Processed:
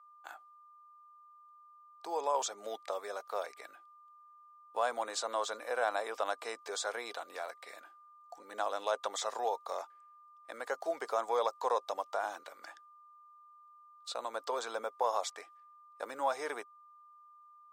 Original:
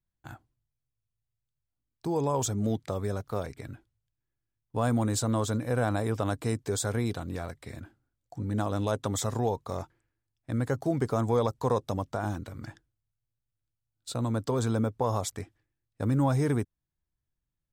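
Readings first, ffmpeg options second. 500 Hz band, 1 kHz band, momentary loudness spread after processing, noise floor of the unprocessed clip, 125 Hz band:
-5.0 dB, 0.0 dB, 18 LU, under -85 dBFS, under -40 dB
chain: -filter_complex "[0:a]aeval=exprs='val(0)+0.00158*sin(2*PI*1200*n/s)':c=same,highpass=f=560:w=0.5412,highpass=f=560:w=1.3066,acrossover=split=6600[s0][s1];[s1]acompressor=threshold=0.001:ratio=4:attack=1:release=60[s2];[s0][s2]amix=inputs=2:normalize=0"

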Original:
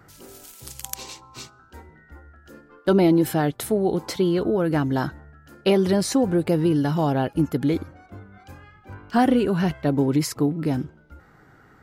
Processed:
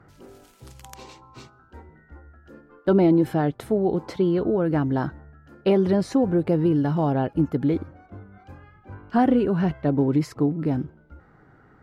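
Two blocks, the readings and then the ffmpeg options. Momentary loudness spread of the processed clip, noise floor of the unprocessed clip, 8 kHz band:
8 LU, -54 dBFS, under -10 dB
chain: -af "lowpass=f=1300:p=1"

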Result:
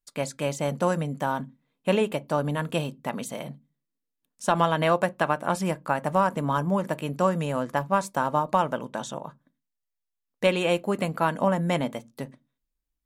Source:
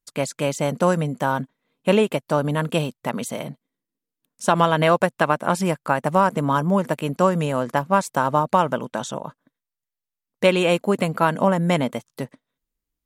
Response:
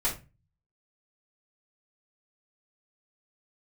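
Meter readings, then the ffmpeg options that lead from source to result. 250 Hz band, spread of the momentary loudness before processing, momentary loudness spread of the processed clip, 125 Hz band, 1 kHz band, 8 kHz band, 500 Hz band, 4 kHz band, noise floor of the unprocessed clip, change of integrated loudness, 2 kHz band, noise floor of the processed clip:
-5.5 dB, 11 LU, 11 LU, -5.0 dB, -4.5 dB, -5.5 dB, -5.0 dB, -5.0 dB, under -85 dBFS, -5.0 dB, -5.0 dB, -83 dBFS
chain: -filter_complex "[0:a]asplit=2[s0][s1];[1:a]atrim=start_sample=2205,asetrate=79380,aresample=44100,highshelf=f=4800:g=-7.5[s2];[s1][s2]afir=irnorm=-1:irlink=0,volume=0.178[s3];[s0][s3]amix=inputs=2:normalize=0,volume=0.531"

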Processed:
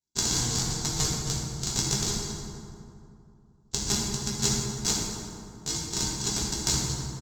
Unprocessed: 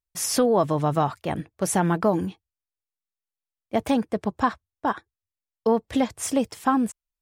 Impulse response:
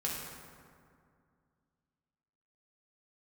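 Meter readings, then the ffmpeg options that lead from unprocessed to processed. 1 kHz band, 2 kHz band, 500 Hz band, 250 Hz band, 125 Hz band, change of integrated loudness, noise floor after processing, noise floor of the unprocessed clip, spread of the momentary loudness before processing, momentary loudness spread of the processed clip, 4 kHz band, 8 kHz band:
-14.0 dB, -5.0 dB, -15.0 dB, -10.0 dB, -0.5 dB, -3.0 dB, -58 dBFS, under -85 dBFS, 8 LU, 11 LU, +9.5 dB, +7.0 dB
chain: -filter_complex "[0:a]highpass=940,acrossover=split=1800[s0][s1];[s0]acompressor=threshold=0.0126:ratio=6[s2];[s1]alimiter=limit=0.0631:level=0:latency=1:release=147[s3];[s2][s3]amix=inputs=2:normalize=0,acontrast=53,aresample=16000,acrusher=samples=26:mix=1:aa=0.000001,aresample=44100,aexciter=amount=12.7:drive=5.6:freq=3700,aeval=exprs='0.841*(cos(1*acos(clip(val(0)/0.841,-1,1)))-cos(1*PI/2))+0.0596*(cos(4*acos(clip(val(0)/0.841,-1,1)))-cos(4*PI/2))+0.0422*(cos(7*acos(clip(val(0)/0.841,-1,1)))-cos(7*PI/2))':c=same[s4];[1:a]atrim=start_sample=2205,asetrate=37044,aresample=44100[s5];[s4][s5]afir=irnorm=-1:irlink=0,volume=0.708"

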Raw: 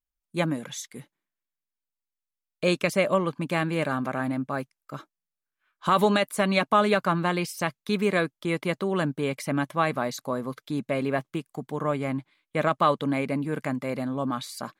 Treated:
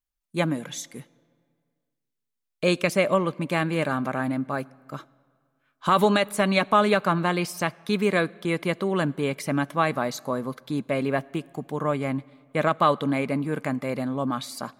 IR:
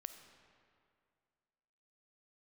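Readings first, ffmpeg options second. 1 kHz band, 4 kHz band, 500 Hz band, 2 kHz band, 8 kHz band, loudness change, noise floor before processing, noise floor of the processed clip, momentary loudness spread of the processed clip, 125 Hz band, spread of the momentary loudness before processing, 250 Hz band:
+1.5 dB, +1.5 dB, +1.5 dB, +1.5 dB, +1.5 dB, +1.5 dB, under -85 dBFS, -82 dBFS, 12 LU, +1.5 dB, 12 LU, +1.5 dB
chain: -filter_complex "[0:a]asplit=2[s0][s1];[1:a]atrim=start_sample=2205,asetrate=48510,aresample=44100[s2];[s1][s2]afir=irnorm=-1:irlink=0,volume=0.376[s3];[s0][s3]amix=inputs=2:normalize=0"

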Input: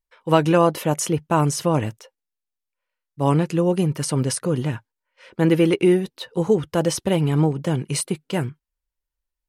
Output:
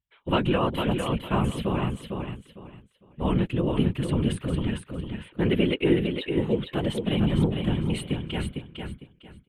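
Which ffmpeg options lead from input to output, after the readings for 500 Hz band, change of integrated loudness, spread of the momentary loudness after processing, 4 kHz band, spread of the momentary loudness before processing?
-7.0 dB, -5.5 dB, 13 LU, -1.5 dB, 9 LU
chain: -af "firequalizer=gain_entry='entry(210,0);entry(570,-7);entry(3300,6);entry(5400,-29);entry(8100,-13)':delay=0.05:min_phase=1,afftfilt=real='hypot(re,im)*cos(2*PI*random(0))':imag='hypot(re,im)*sin(2*PI*random(1))':win_size=512:overlap=0.75,aecho=1:1:454|908|1362:0.531|0.133|0.0332,volume=1.26"

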